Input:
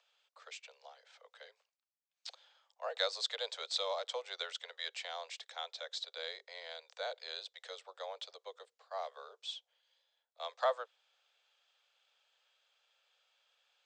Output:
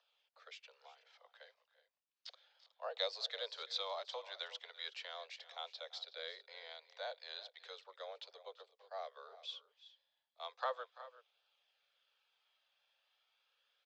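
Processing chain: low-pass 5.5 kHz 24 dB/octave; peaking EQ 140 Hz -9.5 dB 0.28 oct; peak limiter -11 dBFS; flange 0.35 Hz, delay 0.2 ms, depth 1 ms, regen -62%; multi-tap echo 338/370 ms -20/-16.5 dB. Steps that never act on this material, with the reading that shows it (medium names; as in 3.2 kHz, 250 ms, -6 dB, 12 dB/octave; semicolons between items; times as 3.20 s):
peaking EQ 140 Hz: input has nothing below 360 Hz; peak limiter -11 dBFS: peak at its input -17.5 dBFS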